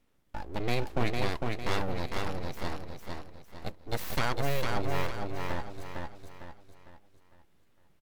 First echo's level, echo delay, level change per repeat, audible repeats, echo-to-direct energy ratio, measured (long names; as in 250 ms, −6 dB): −3.5 dB, 454 ms, −8.0 dB, 4, −2.5 dB